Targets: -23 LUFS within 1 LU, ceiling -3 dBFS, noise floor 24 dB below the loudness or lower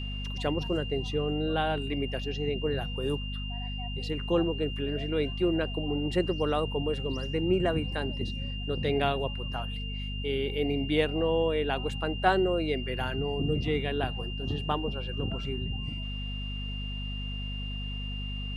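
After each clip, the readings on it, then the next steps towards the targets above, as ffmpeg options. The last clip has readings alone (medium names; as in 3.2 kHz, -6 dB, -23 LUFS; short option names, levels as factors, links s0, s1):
hum 50 Hz; highest harmonic 250 Hz; hum level -33 dBFS; steady tone 2.8 kHz; tone level -39 dBFS; loudness -30.5 LUFS; peak level -9.5 dBFS; loudness target -23.0 LUFS
-> -af "bandreject=f=50:t=h:w=6,bandreject=f=100:t=h:w=6,bandreject=f=150:t=h:w=6,bandreject=f=200:t=h:w=6,bandreject=f=250:t=h:w=6"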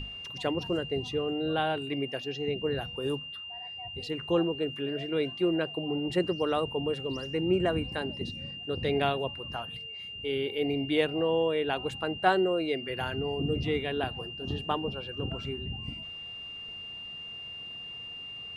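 hum not found; steady tone 2.8 kHz; tone level -39 dBFS
-> -af "bandreject=f=2800:w=30"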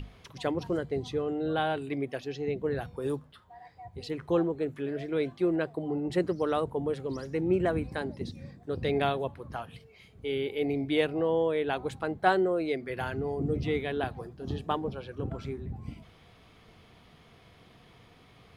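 steady tone not found; loudness -31.5 LUFS; peak level -10.0 dBFS; loudness target -23.0 LUFS
-> -af "volume=2.66,alimiter=limit=0.708:level=0:latency=1"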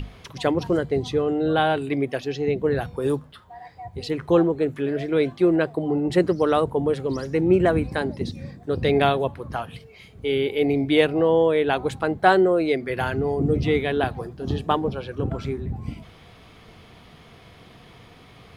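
loudness -23.0 LUFS; peak level -3.0 dBFS; noise floor -49 dBFS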